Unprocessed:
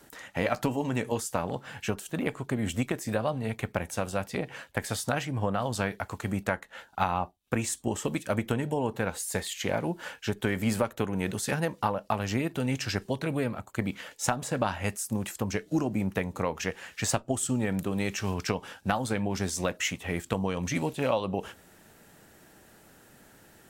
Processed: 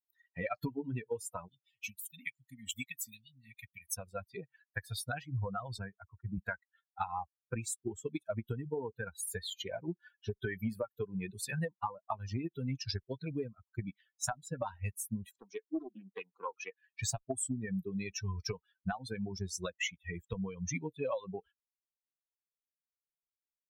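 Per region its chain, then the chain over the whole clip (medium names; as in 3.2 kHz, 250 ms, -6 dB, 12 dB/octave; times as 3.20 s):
1.48–3.95 s: brick-wall FIR band-stop 290–1800 Hz + tilt EQ +2 dB/octave
5.78–6.38 s: high-pass 78 Hz 24 dB/octave + distance through air 420 m
15.31–16.84 s: three-band isolator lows -23 dB, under 220 Hz, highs -15 dB, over 7.1 kHz + loudspeaker Doppler distortion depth 0.5 ms
whole clip: expander on every frequency bin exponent 3; compression 10:1, threshold -35 dBFS; trim +3.5 dB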